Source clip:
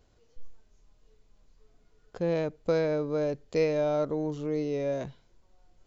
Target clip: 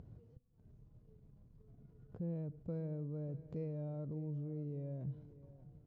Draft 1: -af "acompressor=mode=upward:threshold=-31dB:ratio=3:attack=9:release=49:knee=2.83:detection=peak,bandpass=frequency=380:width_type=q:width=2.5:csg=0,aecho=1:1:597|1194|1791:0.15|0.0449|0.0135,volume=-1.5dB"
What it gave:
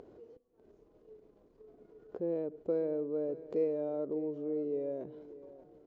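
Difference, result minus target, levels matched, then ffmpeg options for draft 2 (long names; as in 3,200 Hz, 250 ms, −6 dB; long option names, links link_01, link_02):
125 Hz band −20.0 dB
-af "acompressor=mode=upward:threshold=-31dB:ratio=3:attack=9:release=49:knee=2.83:detection=peak,bandpass=frequency=130:width_type=q:width=2.5:csg=0,aecho=1:1:597|1194|1791:0.15|0.0449|0.0135,volume=-1.5dB"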